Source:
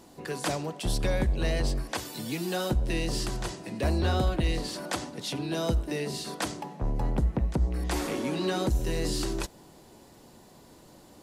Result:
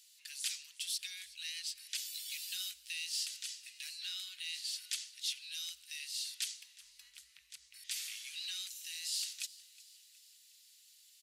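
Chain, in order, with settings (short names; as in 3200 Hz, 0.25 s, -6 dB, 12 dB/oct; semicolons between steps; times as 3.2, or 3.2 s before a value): inverse Chebyshev high-pass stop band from 790 Hz, stop band 60 dB; on a send: frequency-shifting echo 0.366 s, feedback 54%, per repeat +31 Hz, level -20 dB; on the sum: gain -1 dB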